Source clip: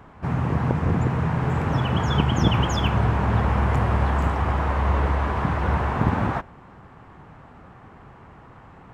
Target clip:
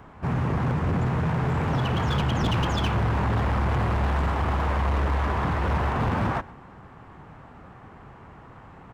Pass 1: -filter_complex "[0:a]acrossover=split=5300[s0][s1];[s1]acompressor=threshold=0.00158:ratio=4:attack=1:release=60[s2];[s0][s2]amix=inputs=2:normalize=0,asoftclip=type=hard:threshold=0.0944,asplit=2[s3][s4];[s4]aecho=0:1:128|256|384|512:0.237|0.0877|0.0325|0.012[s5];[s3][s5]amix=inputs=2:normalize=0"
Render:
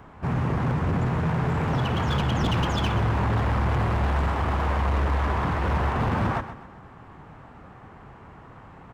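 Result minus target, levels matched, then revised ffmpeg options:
echo-to-direct +11 dB
-filter_complex "[0:a]acrossover=split=5300[s0][s1];[s1]acompressor=threshold=0.00158:ratio=4:attack=1:release=60[s2];[s0][s2]amix=inputs=2:normalize=0,asoftclip=type=hard:threshold=0.0944,asplit=2[s3][s4];[s4]aecho=0:1:128|256:0.0668|0.0247[s5];[s3][s5]amix=inputs=2:normalize=0"

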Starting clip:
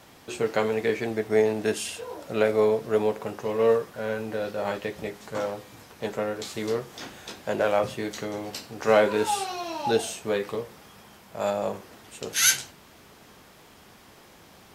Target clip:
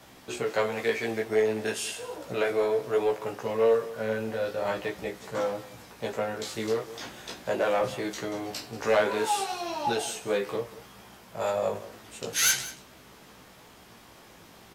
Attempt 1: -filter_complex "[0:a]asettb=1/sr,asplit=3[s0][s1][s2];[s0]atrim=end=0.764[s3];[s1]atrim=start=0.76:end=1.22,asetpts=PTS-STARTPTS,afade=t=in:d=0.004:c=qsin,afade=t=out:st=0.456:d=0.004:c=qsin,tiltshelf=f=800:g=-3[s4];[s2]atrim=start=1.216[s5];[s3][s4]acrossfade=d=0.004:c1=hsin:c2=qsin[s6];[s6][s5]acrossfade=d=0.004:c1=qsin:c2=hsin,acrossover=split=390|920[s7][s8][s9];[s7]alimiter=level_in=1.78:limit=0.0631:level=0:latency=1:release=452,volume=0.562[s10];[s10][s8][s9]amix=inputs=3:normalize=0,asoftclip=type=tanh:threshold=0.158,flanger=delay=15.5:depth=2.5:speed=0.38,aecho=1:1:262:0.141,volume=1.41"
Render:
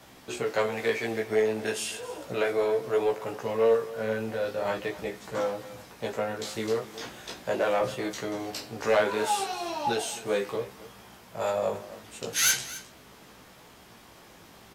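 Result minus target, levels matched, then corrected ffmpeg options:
echo 77 ms late
-filter_complex "[0:a]asettb=1/sr,asplit=3[s0][s1][s2];[s0]atrim=end=0.764[s3];[s1]atrim=start=0.76:end=1.22,asetpts=PTS-STARTPTS,afade=t=in:d=0.004:c=qsin,afade=t=out:st=0.456:d=0.004:c=qsin,tiltshelf=f=800:g=-3[s4];[s2]atrim=start=1.216[s5];[s3][s4]acrossfade=d=0.004:c1=hsin:c2=qsin[s6];[s6][s5]acrossfade=d=0.004:c1=qsin:c2=hsin,acrossover=split=390|920[s7][s8][s9];[s7]alimiter=level_in=1.78:limit=0.0631:level=0:latency=1:release=452,volume=0.562[s10];[s10][s8][s9]amix=inputs=3:normalize=0,asoftclip=type=tanh:threshold=0.158,flanger=delay=15.5:depth=2.5:speed=0.38,aecho=1:1:185:0.141,volume=1.41"

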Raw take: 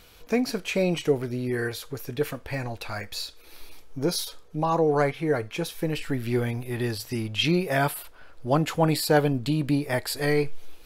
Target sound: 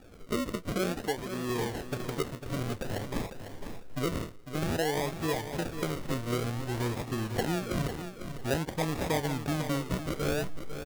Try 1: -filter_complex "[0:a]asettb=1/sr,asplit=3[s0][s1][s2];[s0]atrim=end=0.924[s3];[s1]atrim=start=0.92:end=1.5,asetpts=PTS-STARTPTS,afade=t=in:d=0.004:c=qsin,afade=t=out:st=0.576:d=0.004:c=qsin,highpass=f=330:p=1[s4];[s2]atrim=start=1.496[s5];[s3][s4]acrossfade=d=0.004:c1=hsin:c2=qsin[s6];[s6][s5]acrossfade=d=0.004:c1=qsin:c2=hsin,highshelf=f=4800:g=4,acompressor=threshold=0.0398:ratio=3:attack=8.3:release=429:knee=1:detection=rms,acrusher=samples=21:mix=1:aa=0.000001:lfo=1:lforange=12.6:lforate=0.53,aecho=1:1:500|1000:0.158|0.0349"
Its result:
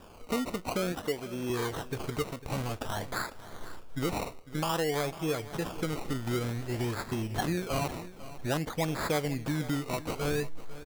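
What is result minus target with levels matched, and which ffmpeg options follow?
echo-to-direct -6.5 dB; decimation with a swept rate: distortion -6 dB
-filter_complex "[0:a]asettb=1/sr,asplit=3[s0][s1][s2];[s0]atrim=end=0.924[s3];[s1]atrim=start=0.92:end=1.5,asetpts=PTS-STARTPTS,afade=t=in:d=0.004:c=qsin,afade=t=out:st=0.576:d=0.004:c=qsin,highpass=f=330:p=1[s4];[s2]atrim=start=1.496[s5];[s3][s4]acrossfade=d=0.004:c1=hsin:c2=qsin[s6];[s6][s5]acrossfade=d=0.004:c1=qsin:c2=hsin,highshelf=f=4800:g=4,acompressor=threshold=0.0398:ratio=3:attack=8.3:release=429:knee=1:detection=rms,acrusher=samples=42:mix=1:aa=0.000001:lfo=1:lforange=25.2:lforate=0.53,aecho=1:1:500|1000|1500:0.335|0.0737|0.0162"

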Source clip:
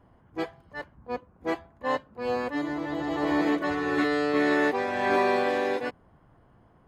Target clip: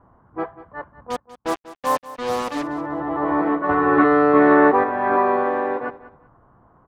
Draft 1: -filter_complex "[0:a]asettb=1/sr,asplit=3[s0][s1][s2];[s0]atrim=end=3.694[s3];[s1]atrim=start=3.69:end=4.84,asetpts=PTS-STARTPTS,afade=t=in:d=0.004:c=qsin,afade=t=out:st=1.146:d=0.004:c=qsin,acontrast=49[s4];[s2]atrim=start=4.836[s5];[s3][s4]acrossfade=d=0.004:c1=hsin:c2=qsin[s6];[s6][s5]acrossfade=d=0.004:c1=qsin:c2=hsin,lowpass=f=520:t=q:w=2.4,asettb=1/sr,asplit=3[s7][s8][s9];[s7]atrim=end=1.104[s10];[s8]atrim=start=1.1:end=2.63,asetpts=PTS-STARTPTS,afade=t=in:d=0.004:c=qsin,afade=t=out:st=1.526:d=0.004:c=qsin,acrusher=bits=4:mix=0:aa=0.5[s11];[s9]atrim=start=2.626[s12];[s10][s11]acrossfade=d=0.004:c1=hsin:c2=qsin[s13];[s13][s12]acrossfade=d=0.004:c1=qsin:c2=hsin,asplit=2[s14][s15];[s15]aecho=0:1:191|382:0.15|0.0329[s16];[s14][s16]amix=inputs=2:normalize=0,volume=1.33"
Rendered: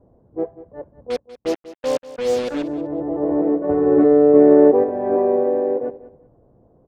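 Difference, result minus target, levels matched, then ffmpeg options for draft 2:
1 kHz band -11.5 dB
-filter_complex "[0:a]asettb=1/sr,asplit=3[s0][s1][s2];[s0]atrim=end=3.694[s3];[s1]atrim=start=3.69:end=4.84,asetpts=PTS-STARTPTS,afade=t=in:d=0.004:c=qsin,afade=t=out:st=1.146:d=0.004:c=qsin,acontrast=49[s4];[s2]atrim=start=4.836[s5];[s3][s4]acrossfade=d=0.004:c1=hsin:c2=qsin[s6];[s6][s5]acrossfade=d=0.004:c1=qsin:c2=hsin,lowpass=f=1200:t=q:w=2.4,asettb=1/sr,asplit=3[s7][s8][s9];[s7]atrim=end=1.104[s10];[s8]atrim=start=1.1:end=2.63,asetpts=PTS-STARTPTS,afade=t=in:d=0.004:c=qsin,afade=t=out:st=1.526:d=0.004:c=qsin,acrusher=bits=4:mix=0:aa=0.5[s11];[s9]atrim=start=2.626[s12];[s10][s11]acrossfade=d=0.004:c1=hsin:c2=qsin[s13];[s13][s12]acrossfade=d=0.004:c1=qsin:c2=hsin,asplit=2[s14][s15];[s15]aecho=0:1:191|382:0.15|0.0329[s16];[s14][s16]amix=inputs=2:normalize=0,volume=1.33"

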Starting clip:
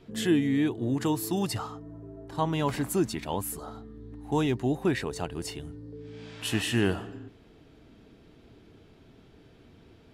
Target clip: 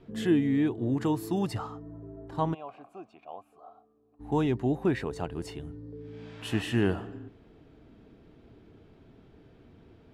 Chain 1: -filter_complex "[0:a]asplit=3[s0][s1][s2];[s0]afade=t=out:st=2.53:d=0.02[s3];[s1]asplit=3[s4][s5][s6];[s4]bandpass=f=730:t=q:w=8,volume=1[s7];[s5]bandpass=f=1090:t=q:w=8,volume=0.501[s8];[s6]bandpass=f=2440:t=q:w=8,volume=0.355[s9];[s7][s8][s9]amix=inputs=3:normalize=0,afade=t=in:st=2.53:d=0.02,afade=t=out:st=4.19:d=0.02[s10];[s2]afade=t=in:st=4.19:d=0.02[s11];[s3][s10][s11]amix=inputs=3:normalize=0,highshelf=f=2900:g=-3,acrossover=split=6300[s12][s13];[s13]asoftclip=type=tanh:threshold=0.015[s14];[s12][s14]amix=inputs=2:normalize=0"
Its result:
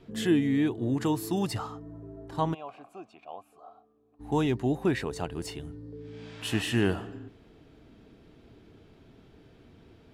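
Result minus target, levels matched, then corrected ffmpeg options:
8 kHz band +6.5 dB
-filter_complex "[0:a]asplit=3[s0][s1][s2];[s0]afade=t=out:st=2.53:d=0.02[s3];[s1]asplit=3[s4][s5][s6];[s4]bandpass=f=730:t=q:w=8,volume=1[s7];[s5]bandpass=f=1090:t=q:w=8,volume=0.501[s8];[s6]bandpass=f=2440:t=q:w=8,volume=0.355[s9];[s7][s8][s9]amix=inputs=3:normalize=0,afade=t=in:st=2.53:d=0.02,afade=t=out:st=4.19:d=0.02[s10];[s2]afade=t=in:st=4.19:d=0.02[s11];[s3][s10][s11]amix=inputs=3:normalize=0,highshelf=f=2900:g=-11.5,acrossover=split=6300[s12][s13];[s13]asoftclip=type=tanh:threshold=0.015[s14];[s12][s14]amix=inputs=2:normalize=0"

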